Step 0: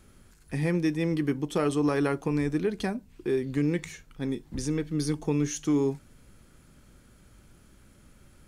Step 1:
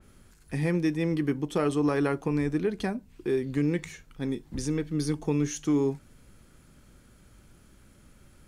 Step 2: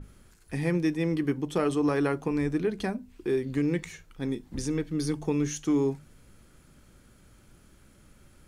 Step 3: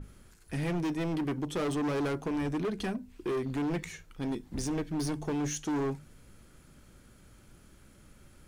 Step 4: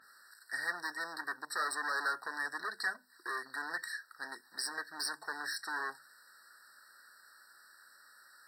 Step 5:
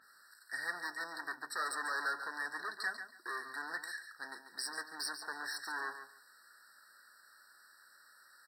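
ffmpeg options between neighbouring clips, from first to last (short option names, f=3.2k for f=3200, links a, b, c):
-af "adynamicequalizer=threshold=0.00501:dfrequency=3000:dqfactor=0.7:tfrequency=3000:tqfactor=0.7:attack=5:release=100:ratio=0.375:range=1.5:mode=cutabove:tftype=highshelf"
-af "aeval=exprs='val(0)+0.0126*(sin(2*PI*50*n/s)+sin(2*PI*2*50*n/s)/2+sin(2*PI*3*50*n/s)/3+sin(2*PI*4*50*n/s)/4+sin(2*PI*5*50*n/s)/5)':c=same,bandreject=f=50:t=h:w=6,bandreject=f=100:t=h:w=6,bandreject=f=150:t=h:w=6,bandreject=f=200:t=h:w=6,bandreject=f=250:t=h:w=6"
-af "asoftclip=type=hard:threshold=-28.5dB"
-af "highpass=f=1.7k:t=q:w=1.9,afftfilt=real='re*eq(mod(floor(b*sr/1024/1900),2),0)':imag='im*eq(mod(floor(b*sr/1024/1900),2),0)':win_size=1024:overlap=0.75,volume=6dB"
-af "aecho=1:1:141|282|423:0.335|0.0636|0.0121,volume=-2.5dB"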